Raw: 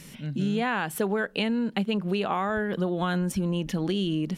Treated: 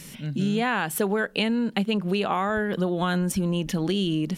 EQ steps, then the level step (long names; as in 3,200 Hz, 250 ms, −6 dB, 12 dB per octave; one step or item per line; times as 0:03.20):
high-shelf EQ 4,600 Hz +5 dB
+2.0 dB